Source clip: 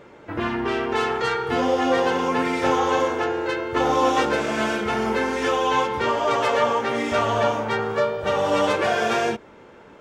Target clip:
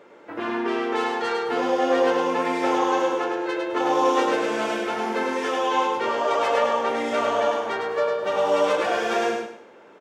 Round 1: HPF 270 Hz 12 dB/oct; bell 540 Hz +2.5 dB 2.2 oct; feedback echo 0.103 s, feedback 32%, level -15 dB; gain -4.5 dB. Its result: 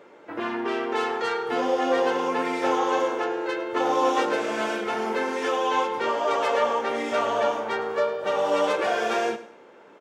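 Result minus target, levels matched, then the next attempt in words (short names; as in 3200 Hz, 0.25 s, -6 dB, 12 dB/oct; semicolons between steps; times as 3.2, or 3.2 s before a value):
echo-to-direct -11.5 dB
HPF 270 Hz 12 dB/oct; bell 540 Hz +2.5 dB 2.2 oct; feedback echo 0.103 s, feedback 32%, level -3.5 dB; gain -4.5 dB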